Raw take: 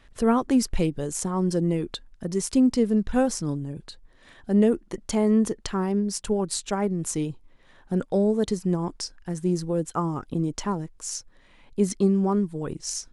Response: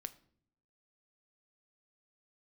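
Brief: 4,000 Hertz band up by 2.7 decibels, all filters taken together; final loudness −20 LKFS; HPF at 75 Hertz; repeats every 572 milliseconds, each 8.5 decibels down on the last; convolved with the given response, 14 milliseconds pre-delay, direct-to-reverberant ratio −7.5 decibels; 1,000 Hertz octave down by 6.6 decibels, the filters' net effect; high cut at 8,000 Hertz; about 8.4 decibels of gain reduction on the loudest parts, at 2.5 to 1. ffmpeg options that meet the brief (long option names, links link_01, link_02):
-filter_complex "[0:a]highpass=75,lowpass=8000,equalizer=frequency=1000:width_type=o:gain=-9,equalizer=frequency=4000:width_type=o:gain=4.5,acompressor=threshold=-29dB:ratio=2.5,aecho=1:1:572|1144|1716|2288:0.376|0.143|0.0543|0.0206,asplit=2[link_01][link_02];[1:a]atrim=start_sample=2205,adelay=14[link_03];[link_02][link_03]afir=irnorm=-1:irlink=0,volume=11dB[link_04];[link_01][link_04]amix=inputs=2:normalize=0,volume=3.5dB"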